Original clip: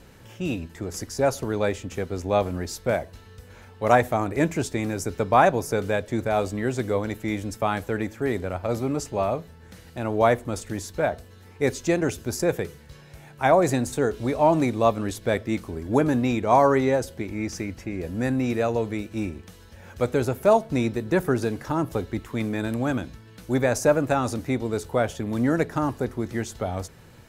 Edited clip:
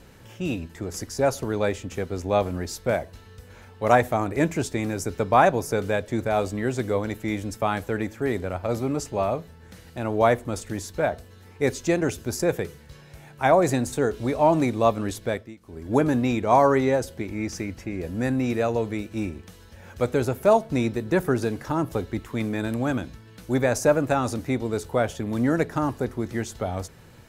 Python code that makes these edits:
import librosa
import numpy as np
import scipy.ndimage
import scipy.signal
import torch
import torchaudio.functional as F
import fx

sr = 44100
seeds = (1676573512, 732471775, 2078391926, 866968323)

y = fx.edit(x, sr, fx.fade_down_up(start_s=15.19, length_s=0.77, db=-22.0, fade_s=0.36), tone=tone)